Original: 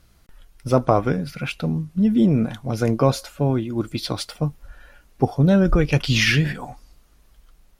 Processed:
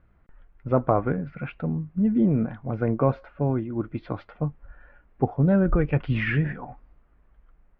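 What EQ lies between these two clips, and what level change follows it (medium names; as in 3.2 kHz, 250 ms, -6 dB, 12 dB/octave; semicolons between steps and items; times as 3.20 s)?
low-pass 2 kHz 24 dB/octave; -4.0 dB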